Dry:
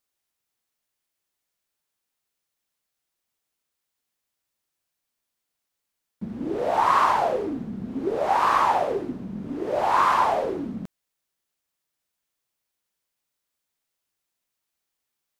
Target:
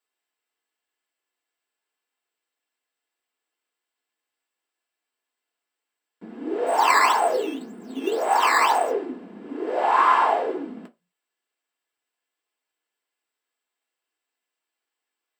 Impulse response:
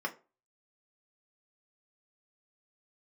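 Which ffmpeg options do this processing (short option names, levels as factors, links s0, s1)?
-filter_complex "[0:a]asplit=3[s0][s1][s2];[s0]afade=t=out:st=6.66:d=0.02[s3];[s1]acrusher=samples=10:mix=1:aa=0.000001:lfo=1:lforange=10:lforate=1.9,afade=t=in:st=6.66:d=0.02,afade=t=out:st=8.9:d=0.02[s4];[s2]afade=t=in:st=8.9:d=0.02[s5];[s3][s4][s5]amix=inputs=3:normalize=0[s6];[1:a]atrim=start_sample=2205,asetrate=66150,aresample=44100[s7];[s6][s7]afir=irnorm=-1:irlink=0"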